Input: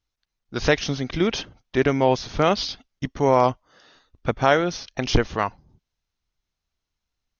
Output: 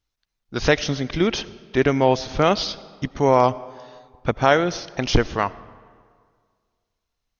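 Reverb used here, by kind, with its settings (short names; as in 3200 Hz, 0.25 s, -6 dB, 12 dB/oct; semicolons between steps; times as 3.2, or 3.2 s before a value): digital reverb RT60 1.9 s, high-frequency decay 0.65×, pre-delay 45 ms, DRR 19 dB; gain +1.5 dB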